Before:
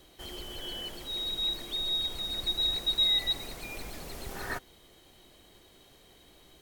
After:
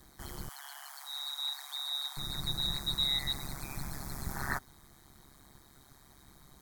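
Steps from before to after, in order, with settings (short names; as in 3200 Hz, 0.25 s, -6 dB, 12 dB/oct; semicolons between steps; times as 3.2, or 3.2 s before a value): fixed phaser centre 1200 Hz, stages 4; AM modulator 140 Hz, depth 80%; 0.49–2.17 steep high-pass 680 Hz 96 dB/oct; gain +7 dB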